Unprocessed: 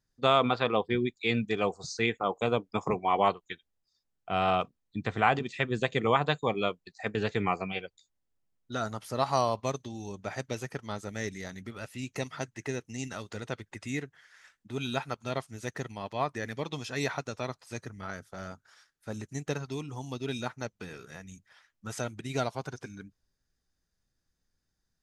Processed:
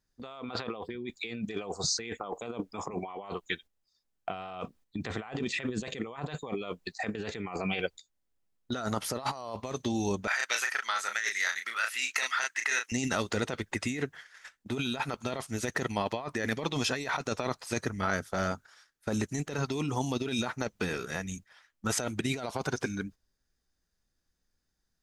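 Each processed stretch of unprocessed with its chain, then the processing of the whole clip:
0:10.27–0:12.92: high-pass with resonance 1,500 Hz, resonance Q 1.8 + double-tracking delay 35 ms −6.5 dB
whole clip: noise gate −55 dBFS, range −10 dB; parametric band 120 Hz −6 dB 0.7 octaves; compressor whose output falls as the input rises −39 dBFS, ratio −1; level +5 dB

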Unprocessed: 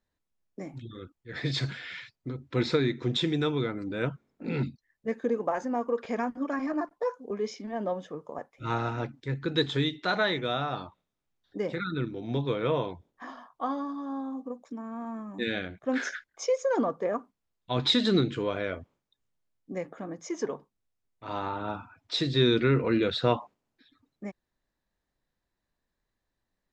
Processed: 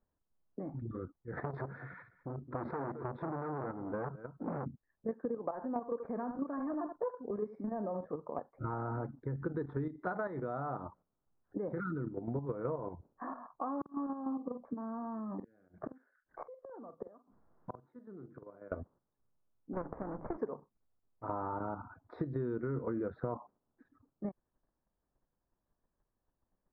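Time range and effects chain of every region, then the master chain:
0:01.31–0:04.66: dynamic equaliser 1,100 Hz, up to +5 dB, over −42 dBFS, Q 0.86 + single-tap delay 213 ms −19 dB + saturating transformer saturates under 2,700 Hz
0:05.51–0:08.06: low-shelf EQ 120 Hz +5 dB + single-tap delay 77 ms −11.5 dB
0:13.81–0:18.72: gate with flip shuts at −26 dBFS, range −39 dB + double-tracking delay 46 ms −12.5 dB + multiband upward and downward compressor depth 70%
0:19.73–0:20.38: lower of the sound and its delayed copy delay 0.36 ms + low-pass filter 1,000 Hz + every bin compressed towards the loudest bin 2 to 1
whole clip: output level in coarse steps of 9 dB; inverse Chebyshev low-pass filter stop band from 2,700 Hz, stop band 40 dB; downward compressor 5 to 1, threshold −40 dBFS; level +5.5 dB

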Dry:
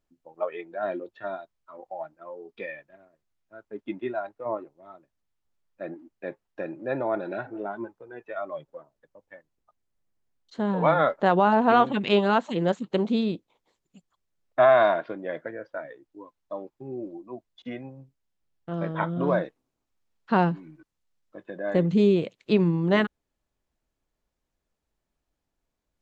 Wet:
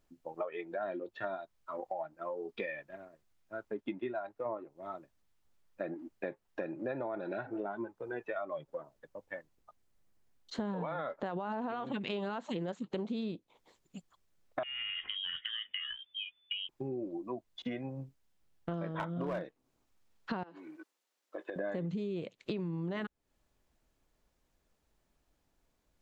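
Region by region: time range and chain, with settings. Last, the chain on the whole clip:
0:14.63–0:16.69: downward compressor 8 to 1, threshold −32 dBFS + voice inversion scrambler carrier 3,500 Hz
0:18.96–0:19.43: mains-hum notches 50/100/150/200/250/300/350 Hz + gain into a clipping stage and back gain 18.5 dB
0:20.43–0:21.56: high-pass filter 320 Hz 24 dB per octave + downward compressor, threshold −40 dBFS
whole clip: brickwall limiter −18 dBFS; downward compressor 6 to 1, threshold −41 dBFS; level +5.5 dB

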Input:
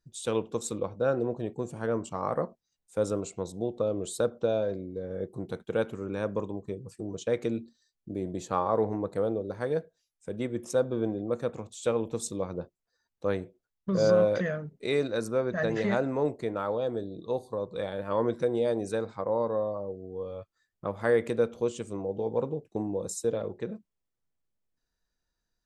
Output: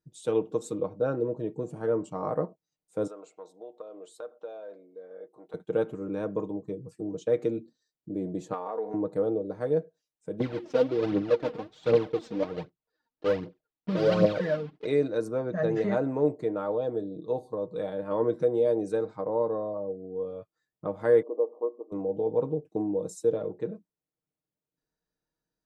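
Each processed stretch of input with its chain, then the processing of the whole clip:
0:01.15–0:01.63: notch filter 730 Hz, Q 5 + upward compression, threshold −39 dBFS
0:03.07–0:05.54: high-pass filter 840 Hz + high-shelf EQ 3,300 Hz −11.5 dB + downward compressor 2 to 1, threshold −40 dBFS
0:08.53–0:08.94: comb filter 4.2 ms, depth 48% + downward compressor 5 to 1, threshold −26 dBFS + meter weighting curve A
0:10.40–0:14.87: one scale factor per block 3 bits + low-pass filter 4,500 Hz 24 dB per octave + phase shifter 1.3 Hz, delay 4.5 ms, feedback 62%
0:21.22–0:21.92: linear-phase brick-wall band-pass 240–1,200 Hz + tilt shelving filter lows −10 dB, about 800 Hz + one half of a high-frequency compander decoder only
whole clip: high-pass filter 450 Hz 6 dB per octave; tilt shelving filter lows +9.5 dB, about 710 Hz; comb filter 6.5 ms, depth 51%

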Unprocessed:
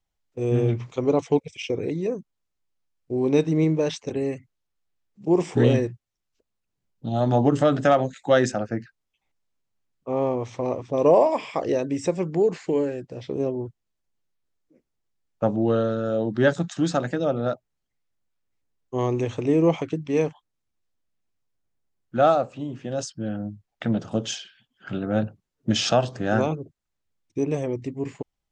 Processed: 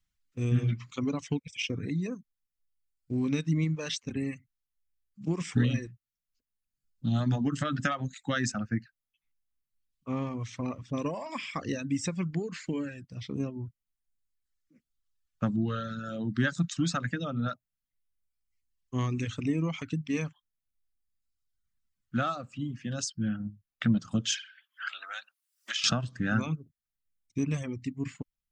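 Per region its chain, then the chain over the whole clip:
0:24.34–0:25.84: high-pass filter 850 Hz 24 dB per octave + multiband upward and downward compressor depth 100%
whole clip: downward compressor 5 to 1, threshold −19 dBFS; reverb reduction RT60 1.4 s; flat-topped bell 560 Hz −15 dB; level +1.5 dB

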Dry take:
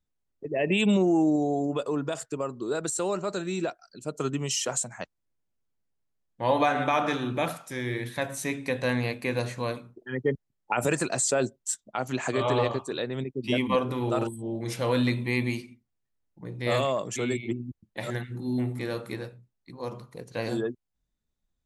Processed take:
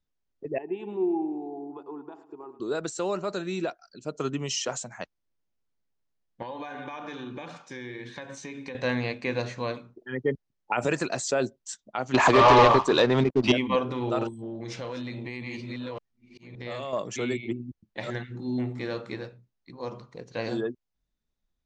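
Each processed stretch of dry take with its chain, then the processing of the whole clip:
0:00.58–0:02.60: pair of resonant band-passes 560 Hz, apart 1.2 octaves + repeating echo 106 ms, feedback 60%, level −14 dB
0:06.42–0:08.75: parametric band 82 Hz −8 dB 0.82 octaves + downward compressor, threshold −33 dBFS + notch comb filter 660 Hz
0:12.14–0:13.52: parametric band 1,000 Hz +10.5 dB 0.66 octaves + leveller curve on the samples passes 3
0:14.28–0:16.93: delay that plays each chunk backwards 568 ms, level −6 dB + downward compressor 12 to 1, threshold −30 dBFS + volume swells 302 ms
whole clip: Butterworth low-pass 6,600 Hz 36 dB per octave; parametric band 110 Hz −3 dB 1.4 octaves

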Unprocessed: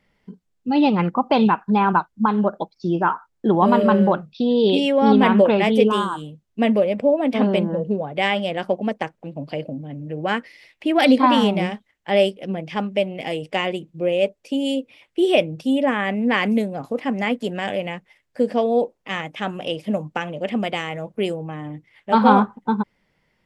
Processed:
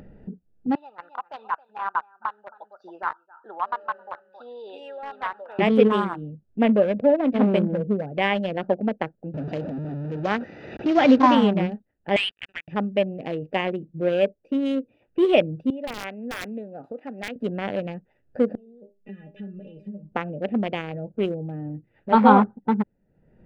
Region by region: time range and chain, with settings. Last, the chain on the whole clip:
0:00.75–0:05.59: Chebyshev high-pass filter 1,100 Hz, order 3 + parametric band 2,500 Hz −11 dB 0.95 octaves + single-tap delay 269 ms −13.5 dB
0:09.34–0:11.35: linear delta modulator 32 kbit/s, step −22 dBFS + high-pass filter 110 Hz
0:12.16–0:12.68: elliptic band-pass filter 1,700–4,600 Hz, stop band 50 dB + leveller curve on the samples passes 5 + high-frequency loss of the air 60 metres
0:15.70–0:17.36: high-pass filter 1,300 Hz 6 dB per octave + wrap-around overflow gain 16 dB
0:18.55–0:20.12: flat-topped bell 960 Hz −12.5 dB 1.3 octaves + downward compressor 12 to 1, threshold −28 dBFS + stiff-string resonator 200 Hz, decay 0.21 s, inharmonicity 0.002
whole clip: adaptive Wiener filter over 41 samples; bass and treble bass 0 dB, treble −13 dB; upward compression, threshold −29 dBFS

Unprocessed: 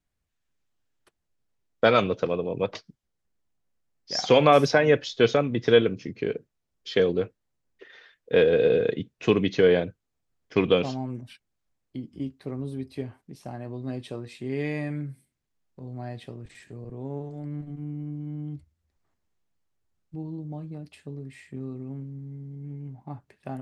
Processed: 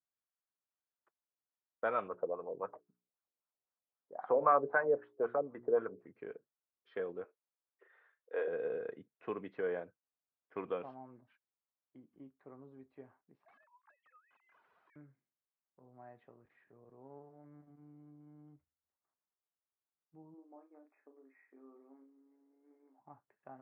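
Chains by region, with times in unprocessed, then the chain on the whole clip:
0:02.08–0:06.07: high-pass filter 42 Hz + mains-hum notches 60/120/180/240/300/360/420 Hz + auto-filter low-pass sine 3.8 Hz 450–1,600 Hz
0:07.24–0:08.48: high-pass filter 330 Hz 24 dB per octave + double-tracking delay 38 ms −9 dB
0:13.45–0:14.96: three sine waves on the formant tracks + Butterworth high-pass 810 Hz 48 dB per octave + wrap-around overflow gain 44.5 dB
0:20.34–0:23.00: linear-phase brick-wall band-pass 240–2,600 Hz + double-tracking delay 37 ms −7 dB
whole clip: low-pass filter 1,300 Hz 24 dB per octave; first difference; level +6.5 dB

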